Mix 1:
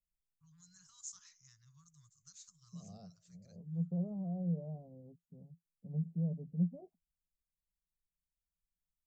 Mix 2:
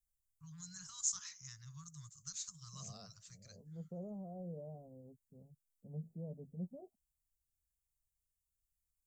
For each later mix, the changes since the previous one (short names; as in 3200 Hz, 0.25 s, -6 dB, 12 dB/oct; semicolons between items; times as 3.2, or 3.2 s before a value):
first voice +11.5 dB; second voice: add bell 170 Hz -14 dB 0.35 oct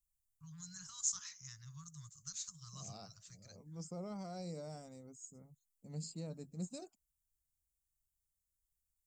second voice: remove inverse Chebyshev low-pass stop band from 1700 Hz, stop band 50 dB; master: add bell 310 Hz +15 dB 0.21 oct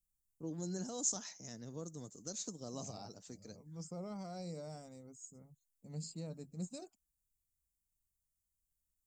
first voice: remove Chebyshev band-stop 150–1100 Hz, order 4